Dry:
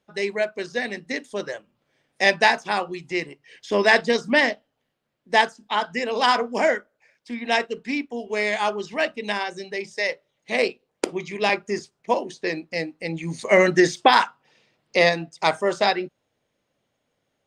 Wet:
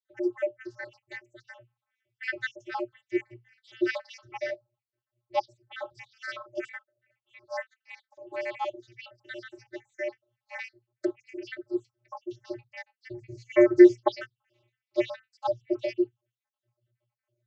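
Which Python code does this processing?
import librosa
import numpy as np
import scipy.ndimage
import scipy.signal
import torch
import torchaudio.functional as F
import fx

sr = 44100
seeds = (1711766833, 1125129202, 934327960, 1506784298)

y = fx.spec_dropout(x, sr, seeds[0], share_pct=66)
y = fx.vocoder(y, sr, bands=32, carrier='square', carrier_hz=119.0)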